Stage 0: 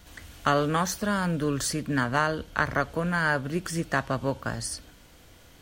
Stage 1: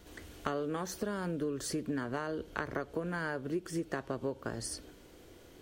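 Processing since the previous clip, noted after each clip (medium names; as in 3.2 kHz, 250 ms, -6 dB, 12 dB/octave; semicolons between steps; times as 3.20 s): peaking EQ 380 Hz +14 dB 0.92 oct; compression, threshold -26 dBFS, peak gain reduction 12.5 dB; trim -6 dB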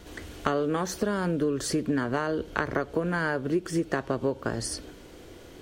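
treble shelf 11 kHz -7.5 dB; trim +8.5 dB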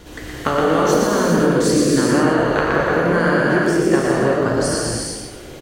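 on a send: frequency-shifting echo 118 ms, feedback 34%, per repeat +47 Hz, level -4 dB; on the sum: gated-style reverb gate 430 ms flat, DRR -3.5 dB; trim +5.5 dB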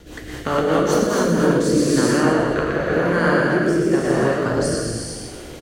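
rotary cabinet horn 5 Hz, later 0.9 Hz, at 0.92 s; on a send: feedback delay 105 ms, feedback 60%, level -13 dB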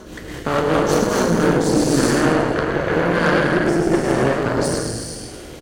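reverse echo 1193 ms -23.5 dB; Chebyshev shaper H 6 -17 dB, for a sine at -4.5 dBFS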